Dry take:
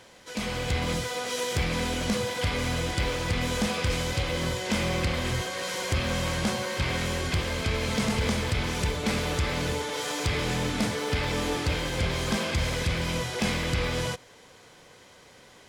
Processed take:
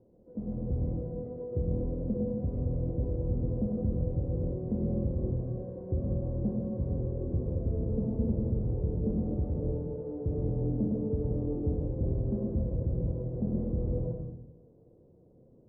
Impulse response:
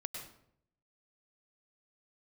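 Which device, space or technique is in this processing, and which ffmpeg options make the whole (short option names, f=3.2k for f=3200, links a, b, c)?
next room: -filter_complex "[0:a]lowpass=f=460:w=0.5412,lowpass=f=460:w=1.3066[a];[1:a]atrim=start_sample=2205[b];[a][b]afir=irnorm=-1:irlink=0"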